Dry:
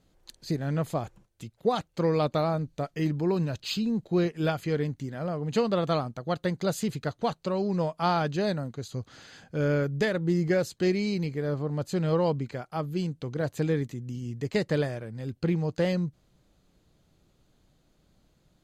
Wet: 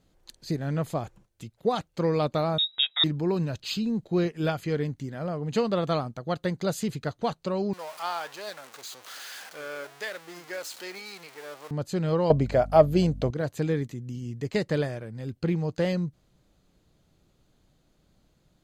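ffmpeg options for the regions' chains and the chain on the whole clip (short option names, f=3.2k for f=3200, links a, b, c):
-filter_complex "[0:a]asettb=1/sr,asplit=3[a][b][c];[a]atrim=end=2.584[d];[b]atrim=start=2.58:end=3.04,asetpts=PTS-STARTPTS,afade=t=in:d=0.004:c=qsin,afade=t=out:st=0.456:d=0.004:c=qsin,acontrast=47,lowpass=f=3.3k:t=q:w=0.5098,lowpass=f=3.3k:t=q:w=0.6013,lowpass=f=3.3k:t=q:w=0.9,lowpass=f=3.3k:t=q:w=2.563,afreqshift=-3900[e];[c]atrim=start=3.036[f];[d][e]acrossfade=d=0.004:c1=hsin:c2=qsin[g];[g][f]acrossfade=d=0.004:c1=qsin:c2=hsin,asettb=1/sr,asplit=3[h][i][j];[h]atrim=end=7.734[k];[i]atrim=start=7.73:end=11.71,asetpts=PTS-STARTPTS,afade=t=in:d=0.004:c=qsin,afade=t=out:st=3.976:d=0.004:c=qsin,aeval=exprs='val(0)+0.5*0.0266*sgn(val(0))':c=same,highpass=780,flanger=delay=3.2:depth=7.6:regen=88:speed=1.2:shape=triangular[l];[j]atrim=start=11.706[m];[k][l]acrossfade=d=0.004:c1=hsin:c2=qsin[n];[n][m]acrossfade=d=0.004:c1=qsin:c2=hsin,asettb=1/sr,asplit=3[o][p][q];[o]atrim=end=12.304[r];[p]atrim=start=12.3:end=13.31,asetpts=PTS-STARTPTS,afade=t=in:d=0.004:c=qsin,afade=t=out:st=1.006:d=0.004:c=qsin,equalizer=f=630:t=o:w=0.51:g=14.5,acontrast=69,aeval=exprs='val(0)+0.0158*(sin(2*PI*50*n/s)+sin(2*PI*2*50*n/s)/2+sin(2*PI*3*50*n/s)/3+sin(2*PI*4*50*n/s)/4+sin(2*PI*5*50*n/s)/5)':c=same[s];[q]atrim=start=13.306[t];[r][s]acrossfade=d=0.004:c1=hsin:c2=qsin[u];[u][t]acrossfade=d=0.004:c1=qsin:c2=hsin"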